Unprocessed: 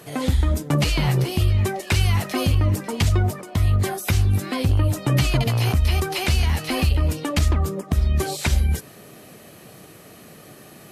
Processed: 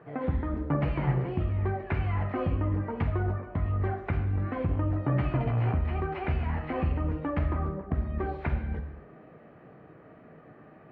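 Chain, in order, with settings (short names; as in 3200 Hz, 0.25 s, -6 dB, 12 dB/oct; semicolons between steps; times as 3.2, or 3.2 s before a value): LPF 1800 Hz 24 dB/oct; notches 50/100/150/200 Hz; non-linear reverb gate 0.29 s falling, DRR 5 dB; gain -6.5 dB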